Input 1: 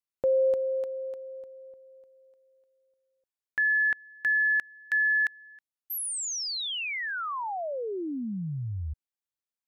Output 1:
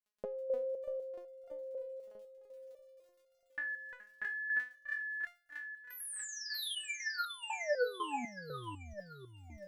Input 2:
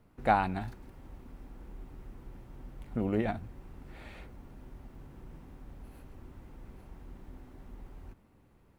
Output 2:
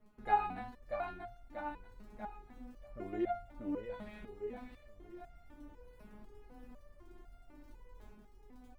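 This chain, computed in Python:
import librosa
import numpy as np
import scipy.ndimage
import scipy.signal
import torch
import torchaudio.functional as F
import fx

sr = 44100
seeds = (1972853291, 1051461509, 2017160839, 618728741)

p1 = fx.high_shelf(x, sr, hz=3900.0, db=-9.5)
p2 = fx.dmg_crackle(p1, sr, seeds[0], per_s=17.0, level_db=-49.0)
p3 = p2 + fx.echo_feedback(p2, sr, ms=638, feedback_pct=43, wet_db=-3.5, dry=0)
p4 = fx.resonator_held(p3, sr, hz=4.0, low_hz=210.0, high_hz=700.0)
y = F.gain(torch.from_numpy(p4), 10.0).numpy()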